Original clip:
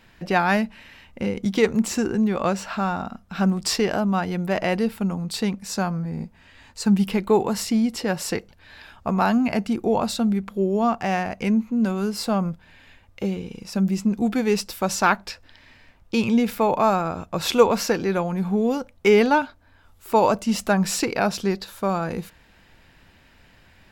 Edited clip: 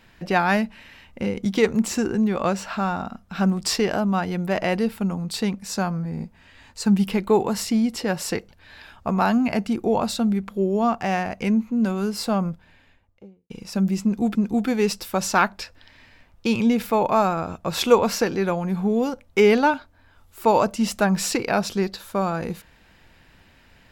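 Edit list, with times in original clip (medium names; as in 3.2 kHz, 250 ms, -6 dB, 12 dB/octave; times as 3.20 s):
12.36–13.50 s: studio fade out
14.03–14.35 s: loop, 2 plays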